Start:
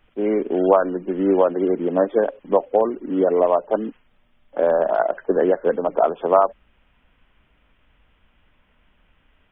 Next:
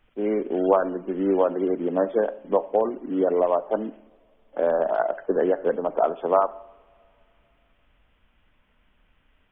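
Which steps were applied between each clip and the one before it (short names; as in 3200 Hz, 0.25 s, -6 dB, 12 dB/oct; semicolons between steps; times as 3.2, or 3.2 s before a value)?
two-slope reverb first 0.7 s, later 3 s, from -21 dB, DRR 15 dB; gain -4 dB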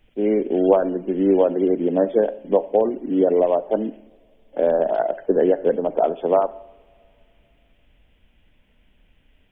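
bell 1200 Hz -13.5 dB 0.97 oct; gain +6 dB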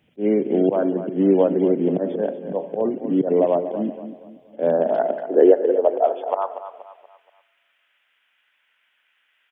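auto swell 0.101 s; high-pass sweep 140 Hz -> 1400 Hz, 4.53–6.81; feedback echo 0.238 s, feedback 39%, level -11.5 dB; gain -1 dB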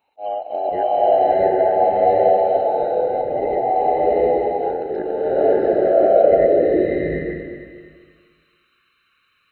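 band inversion scrambler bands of 1000 Hz; bloom reverb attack 0.8 s, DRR -9 dB; gain -6.5 dB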